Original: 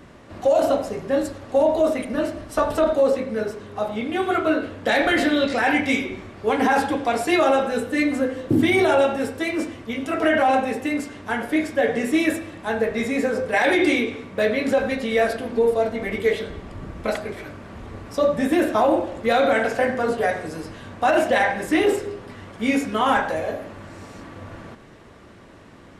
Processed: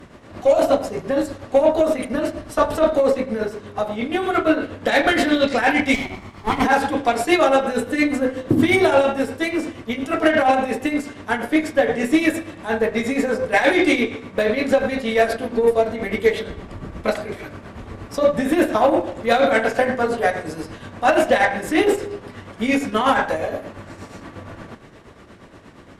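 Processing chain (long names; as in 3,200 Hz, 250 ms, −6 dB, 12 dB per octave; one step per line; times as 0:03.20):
0:05.94–0:06.65: lower of the sound and its delayed copy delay 0.92 ms
shaped tremolo triangle 8.5 Hz, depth 65%
harmonic generator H 6 −32 dB, 8 −27 dB, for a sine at −7.5 dBFS
level +5 dB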